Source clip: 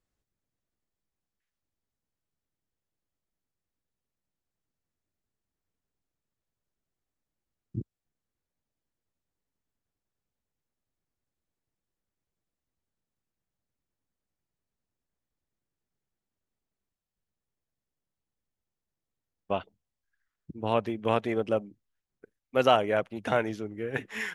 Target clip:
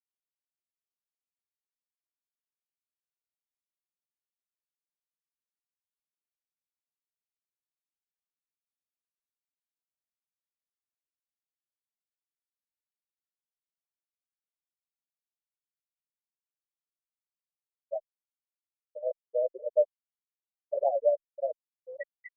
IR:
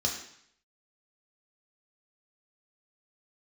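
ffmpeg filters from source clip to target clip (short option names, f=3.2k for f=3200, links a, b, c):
-filter_complex "[0:a]asplit=3[a][b][c];[a]bandpass=f=530:t=q:w=8,volume=0dB[d];[b]bandpass=f=1.84k:t=q:w=8,volume=-6dB[e];[c]bandpass=f=2.48k:t=q:w=8,volume=-9dB[f];[d][e][f]amix=inputs=3:normalize=0,lowshelf=f=140:g=8,afftfilt=real='re*gte(hypot(re,im),0.0794)':imag='im*gte(hypot(re,im),0.0794)':win_size=1024:overlap=0.75,asetrate=48000,aresample=44100,asplit=2[g][h];[h]adelay=5.4,afreqshift=2.2[i];[g][i]amix=inputs=2:normalize=1,volume=8dB"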